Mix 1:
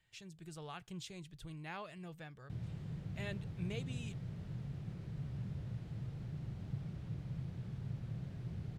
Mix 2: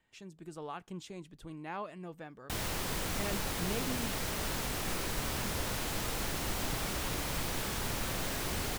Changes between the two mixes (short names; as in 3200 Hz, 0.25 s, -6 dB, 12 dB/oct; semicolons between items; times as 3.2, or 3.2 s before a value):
background: remove band-pass 170 Hz, Q 1.5; master: add graphic EQ 125/250/500/1000/4000 Hz -9/+12/+4/+7/-3 dB